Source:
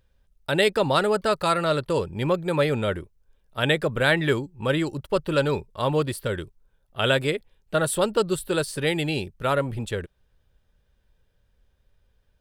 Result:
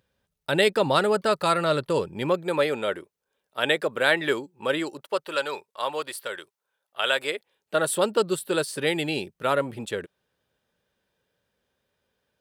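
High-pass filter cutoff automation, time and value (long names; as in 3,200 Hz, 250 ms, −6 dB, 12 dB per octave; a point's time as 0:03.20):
0:01.94 140 Hz
0:02.73 340 Hz
0:04.80 340 Hz
0:05.39 700 Hz
0:07.10 700 Hz
0:07.99 210 Hz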